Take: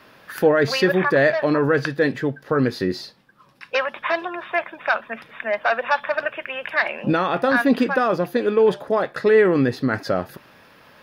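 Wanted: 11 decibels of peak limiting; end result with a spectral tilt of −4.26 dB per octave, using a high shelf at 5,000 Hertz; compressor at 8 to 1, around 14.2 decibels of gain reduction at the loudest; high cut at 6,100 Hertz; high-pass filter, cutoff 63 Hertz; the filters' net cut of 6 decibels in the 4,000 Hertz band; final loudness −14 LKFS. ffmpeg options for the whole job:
ffmpeg -i in.wav -af "highpass=63,lowpass=6100,equalizer=frequency=4000:width_type=o:gain=-9,highshelf=frequency=5000:gain=3.5,acompressor=threshold=-27dB:ratio=8,volume=21dB,alimiter=limit=-4dB:level=0:latency=1" out.wav

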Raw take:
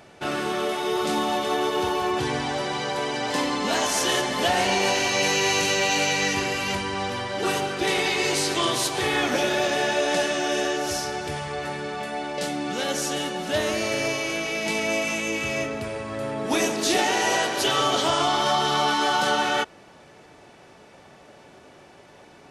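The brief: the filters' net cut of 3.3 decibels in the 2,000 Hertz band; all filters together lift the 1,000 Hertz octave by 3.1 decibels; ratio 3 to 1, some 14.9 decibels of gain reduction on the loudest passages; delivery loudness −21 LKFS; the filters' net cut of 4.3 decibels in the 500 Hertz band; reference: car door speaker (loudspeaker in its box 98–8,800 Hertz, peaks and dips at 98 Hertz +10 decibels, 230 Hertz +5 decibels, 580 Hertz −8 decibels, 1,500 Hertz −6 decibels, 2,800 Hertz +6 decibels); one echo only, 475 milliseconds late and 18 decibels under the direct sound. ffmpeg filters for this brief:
ffmpeg -i in.wav -af "equalizer=frequency=500:width_type=o:gain=-4,equalizer=frequency=1000:width_type=o:gain=8.5,equalizer=frequency=2000:width_type=o:gain=-7,acompressor=threshold=-37dB:ratio=3,highpass=98,equalizer=frequency=98:width_type=q:width=4:gain=10,equalizer=frequency=230:width_type=q:width=4:gain=5,equalizer=frequency=580:width_type=q:width=4:gain=-8,equalizer=frequency=1500:width_type=q:width=4:gain=-6,equalizer=frequency=2800:width_type=q:width=4:gain=6,lowpass=frequency=8800:width=0.5412,lowpass=frequency=8800:width=1.3066,aecho=1:1:475:0.126,volume=14.5dB" out.wav

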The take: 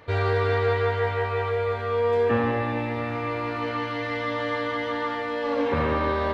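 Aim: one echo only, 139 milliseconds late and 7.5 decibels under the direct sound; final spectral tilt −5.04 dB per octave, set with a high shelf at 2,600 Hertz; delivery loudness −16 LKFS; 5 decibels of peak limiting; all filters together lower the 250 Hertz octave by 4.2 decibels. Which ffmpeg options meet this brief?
ffmpeg -i in.wav -af "equalizer=frequency=250:width_type=o:gain=-5,highshelf=frequency=2600:gain=-7.5,alimiter=limit=-18.5dB:level=0:latency=1,aecho=1:1:139:0.422,volume=12.5dB" out.wav

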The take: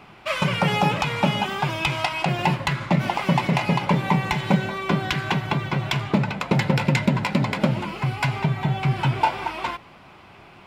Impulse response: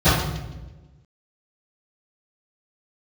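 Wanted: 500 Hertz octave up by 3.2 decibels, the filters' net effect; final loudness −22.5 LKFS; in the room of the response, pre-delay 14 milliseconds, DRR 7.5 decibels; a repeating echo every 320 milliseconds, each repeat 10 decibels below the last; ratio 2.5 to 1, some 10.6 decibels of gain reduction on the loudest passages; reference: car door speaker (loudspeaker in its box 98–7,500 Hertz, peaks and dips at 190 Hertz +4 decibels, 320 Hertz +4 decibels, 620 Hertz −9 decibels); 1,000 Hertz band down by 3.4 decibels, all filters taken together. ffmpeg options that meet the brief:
-filter_complex "[0:a]equalizer=frequency=500:width_type=o:gain=8.5,equalizer=frequency=1000:width_type=o:gain=-5.5,acompressor=threshold=-30dB:ratio=2.5,aecho=1:1:320|640|960|1280:0.316|0.101|0.0324|0.0104,asplit=2[link_01][link_02];[1:a]atrim=start_sample=2205,adelay=14[link_03];[link_02][link_03]afir=irnorm=-1:irlink=0,volume=-30.5dB[link_04];[link_01][link_04]amix=inputs=2:normalize=0,highpass=98,equalizer=frequency=190:width_type=q:width=4:gain=4,equalizer=frequency=320:width_type=q:width=4:gain=4,equalizer=frequency=620:width_type=q:width=4:gain=-9,lowpass=frequency=7500:width=0.5412,lowpass=frequency=7500:width=1.3066,volume=3dB"

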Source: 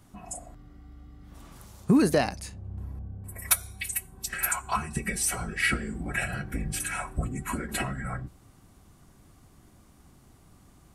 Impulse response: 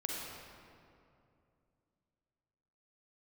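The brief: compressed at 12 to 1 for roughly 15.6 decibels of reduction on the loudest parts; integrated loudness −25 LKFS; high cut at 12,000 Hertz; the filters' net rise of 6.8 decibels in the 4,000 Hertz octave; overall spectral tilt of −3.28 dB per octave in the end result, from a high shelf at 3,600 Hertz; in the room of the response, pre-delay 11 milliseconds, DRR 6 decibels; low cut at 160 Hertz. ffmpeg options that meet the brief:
-filter_complex "[0:a]highpass=160,lowpass=12000,highshelf=frequency=3600:gain=3.5,equalizer=frequency=4000:width_type=o:gain=6.5,acompressor=threshold=-30dB:ratio=12,asplit=2[link_01][link_02];[1:a]atrim=start_sample=2205,adelay=11[link_03];[link_02][link_03]afir=irnorm=-1:irlink=0,volume=-8.5dB[link_04];[link_01][link_04]amix=inputs=2:normalize=0,volume=9.5dB"

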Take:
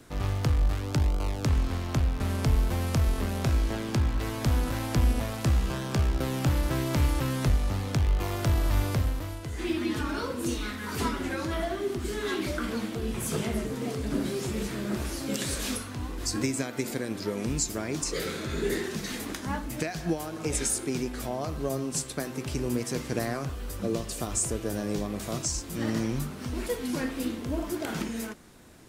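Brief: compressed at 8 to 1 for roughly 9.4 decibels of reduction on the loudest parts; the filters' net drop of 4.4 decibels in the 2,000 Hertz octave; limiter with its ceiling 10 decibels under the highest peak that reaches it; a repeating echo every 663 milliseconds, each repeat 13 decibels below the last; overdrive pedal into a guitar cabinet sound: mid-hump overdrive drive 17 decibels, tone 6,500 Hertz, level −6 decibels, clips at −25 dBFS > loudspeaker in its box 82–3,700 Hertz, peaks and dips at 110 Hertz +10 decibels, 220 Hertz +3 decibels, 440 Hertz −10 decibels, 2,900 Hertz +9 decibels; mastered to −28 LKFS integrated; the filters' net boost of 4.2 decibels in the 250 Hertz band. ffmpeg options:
ffmpeg -i in.wav -filter_complex "[0:a]equalizer=frequency=250:width_type=o:gain=4,equalizer=frequency=2000:width_type=o:gain=-8,acompressor=threshold=-29dB:ratio=8,alimiter=level_in=3dB:limit=-24dB:level=0:latency=1,volume=-3dB,aecho=1:1:663|1326|1989:0.224|0.0493|0.0108,asplit=2[link_01][link_02];[link_02]highpass=frequency=720:poles=1,volume=17dB,asoftclip=type=tanh:threshold=-25dB[link_03];[link_01][link_03]amix=inputs=2:normalize=0,lowpass=frequency=6500:poles=1,volume=-6dB,highpass=82,equalizer=frequency=110:width_type=q:width=4:gain=10,equalizer=frequency=220:width_type=q:width=4:gain=3,equalizer=frequency=440:width_type=q:width=4:gain=-10,equalizer=frequency=2900:width_type=q:width=4:gain=9,lowpass=frequency=3700:width=0.5412,lowpass=frequency=3700:width=1.3066,volume=6.5dB" out.wav

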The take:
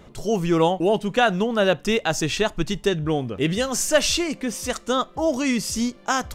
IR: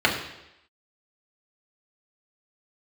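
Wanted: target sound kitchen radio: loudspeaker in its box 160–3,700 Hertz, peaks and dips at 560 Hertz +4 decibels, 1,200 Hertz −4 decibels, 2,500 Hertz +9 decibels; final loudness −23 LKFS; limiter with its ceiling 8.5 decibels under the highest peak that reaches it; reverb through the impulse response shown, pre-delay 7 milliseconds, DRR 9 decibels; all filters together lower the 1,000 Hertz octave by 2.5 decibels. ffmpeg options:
-filter_complex "[0:a]equalizer=frequency=1000:width_type=o:gain=-3.5,alimiter=limit=-13.5dB:level=0:latency=1,asplit=2[link_01][link_02];[1:a]atrim=start_sample=2205,adelay=7[link_03];[link_02][link_03]afir=irnorm=-1:irlink=0,volume=-27.5dB[link_04];[link_01][link_04]amix=inputs=2:normalize=0,highpass=160,equalizer=frequency=560:width_type=q:width=4:gain=4,equalizer=frequency=1200:width_type=q:width=4:gain=-4,equalizer=frequency=2500:width_type=q:width=4:gain=9,lowpass=frequency=3700:width=0.5412,lowpass=frequency=3700:width=1.3066,volume=1dB"

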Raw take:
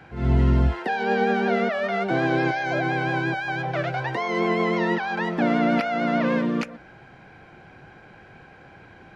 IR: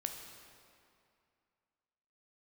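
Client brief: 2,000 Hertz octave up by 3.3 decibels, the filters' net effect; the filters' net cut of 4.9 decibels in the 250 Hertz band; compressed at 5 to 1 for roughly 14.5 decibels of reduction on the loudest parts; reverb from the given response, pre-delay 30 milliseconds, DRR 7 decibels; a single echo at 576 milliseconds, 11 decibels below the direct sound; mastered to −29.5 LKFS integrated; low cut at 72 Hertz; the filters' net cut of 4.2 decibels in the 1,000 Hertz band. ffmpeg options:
-filter_complex "[0:a]highpass=72,equalizer=frequency=250:width_type=o:gain=-6,equalizer=frequency=1000:width_type=o:gain=-7.5,equalizer=frequency=2000:width_type=o:gain=7,acompressor=threshold=-35dB:ratio=5,aecho=1:1:576:0.282,asplit=2[link_01][link_02];[1:a]atrim=start_sample=2205,adelay=30[link_03];[link_02][link_03]afir=irnorm=-1:irlink=0,volume=-7dB[link_04];[link_01][link_04]amix=inputs=2:normalize=0,volume=5.5dB"

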